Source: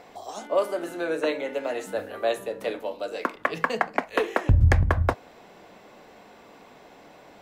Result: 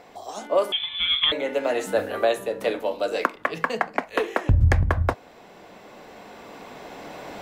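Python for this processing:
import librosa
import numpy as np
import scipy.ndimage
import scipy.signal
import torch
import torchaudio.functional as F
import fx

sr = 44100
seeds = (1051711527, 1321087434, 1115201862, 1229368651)

y = fx.recorder_agc(x, sr, target_db=-10.5, rise_db_per_s=5.5, max_gain_db=30)
y = fx.freq_invert(y, sr, carrier_hz=3800, at=(0.72, 1.32))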